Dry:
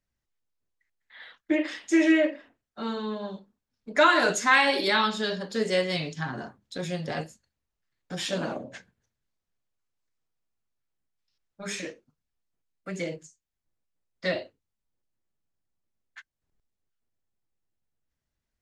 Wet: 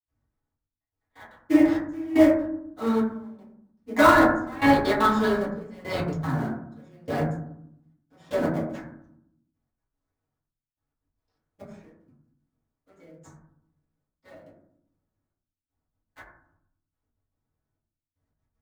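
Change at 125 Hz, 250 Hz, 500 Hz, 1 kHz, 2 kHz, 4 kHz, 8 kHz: +5.5, +5.5, +2.5, +3.0, -2.0, -8.0, -7.5 dB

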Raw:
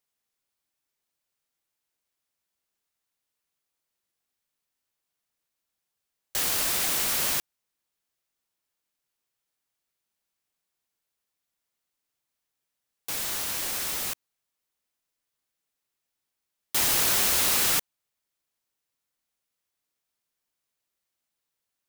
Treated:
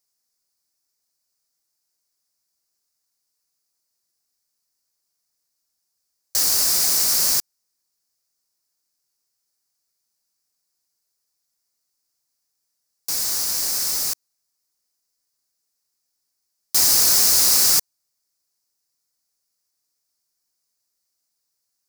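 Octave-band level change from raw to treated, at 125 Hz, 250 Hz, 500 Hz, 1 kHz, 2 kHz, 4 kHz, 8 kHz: 0.0, 0.0, 0.0, -0.5, -2.0, +8.0, +9.0 dB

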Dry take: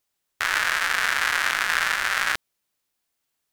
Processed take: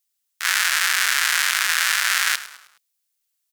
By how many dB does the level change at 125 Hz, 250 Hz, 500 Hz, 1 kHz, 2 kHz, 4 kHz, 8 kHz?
n/a, under -10 dB, -7.5 dB, -1.0 dB, +2.0 dB, +6.5 dB, +10.5 dB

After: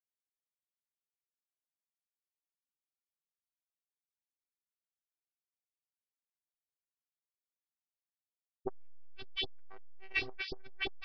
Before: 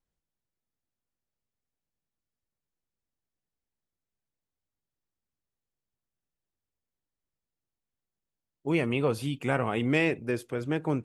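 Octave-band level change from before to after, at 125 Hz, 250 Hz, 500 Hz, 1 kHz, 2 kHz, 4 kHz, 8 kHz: -26.5 dB, -24.0 dB, -19.0 dB, -17.0 dB, -7.0 dB, +1.0 dB, under -20 dB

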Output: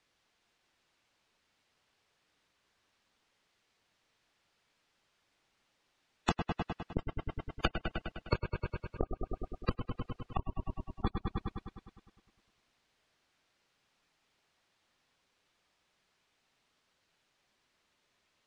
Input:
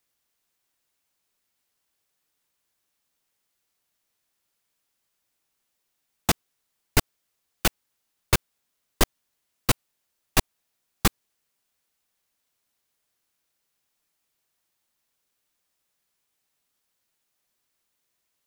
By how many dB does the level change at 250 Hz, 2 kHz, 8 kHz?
-6.0, -12.0, -28.5 dB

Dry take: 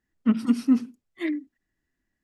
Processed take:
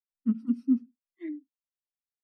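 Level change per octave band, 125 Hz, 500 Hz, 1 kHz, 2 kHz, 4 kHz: n/a, under -10 dB, under -20 dB, under -15 dB, under -25 dB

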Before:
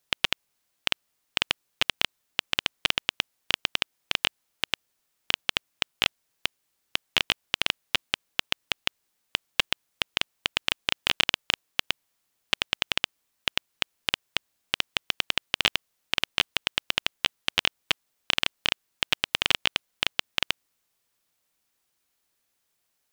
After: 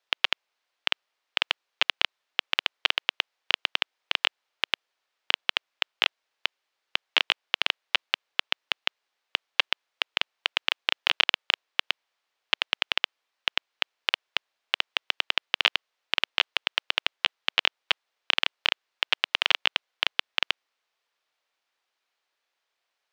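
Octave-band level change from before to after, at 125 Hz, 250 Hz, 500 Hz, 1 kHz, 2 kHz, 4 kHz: under -15 dB, -10.5 dB, -1.0 dB, +1.5 dB, +1.5 dB, +0.5 dB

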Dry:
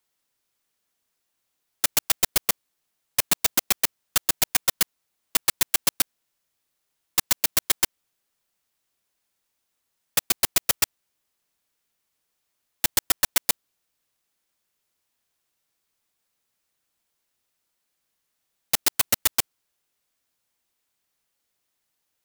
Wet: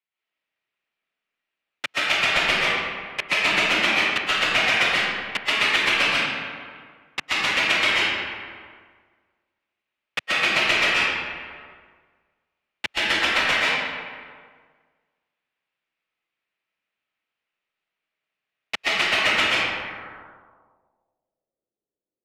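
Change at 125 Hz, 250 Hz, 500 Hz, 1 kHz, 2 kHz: +3.0, +6.5, +9.0, +9.5, +14.0 dB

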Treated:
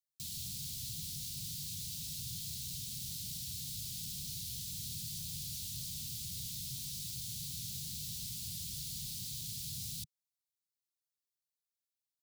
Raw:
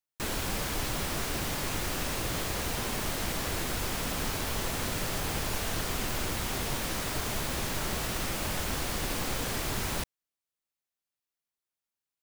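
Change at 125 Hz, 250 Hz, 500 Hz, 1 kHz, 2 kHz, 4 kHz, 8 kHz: -9.5 dB, -16.0 dB, under -40 dB, under -40 dB, -26.5 dB, -7.0 dB, -5.5 dB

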